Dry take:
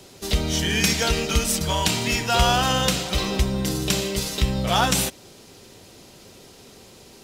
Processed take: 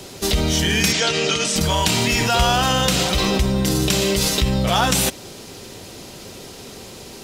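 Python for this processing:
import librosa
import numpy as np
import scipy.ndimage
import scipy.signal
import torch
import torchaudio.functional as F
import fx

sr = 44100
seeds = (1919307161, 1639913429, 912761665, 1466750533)

p1 = fx.over_compress(x, sr, threshold_db=-28.0, ratio=-1.0)
p2 = x + (p1 * 10.0 ** (1.0 / 20.0))
y = fx.cabinet(p2, sr, low_hz=130.0, low_slope=24, high_hz=7900.0, hz=(220.0, 840.0, 3100.0), db=(-9, -4, 3), at=(0.92, 1.56))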